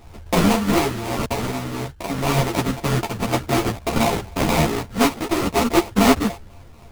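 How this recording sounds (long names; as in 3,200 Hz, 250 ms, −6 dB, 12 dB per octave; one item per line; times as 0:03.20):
a buzz of ramps at a fixed pitch in blocks of 64 samples
phaser sweep stages 12, 4 Hz, lowest notch 720–2,100 Hz
aliases and images of a low sample rate 1,600 Hz, jitter 20%
a shimmering, thickened sound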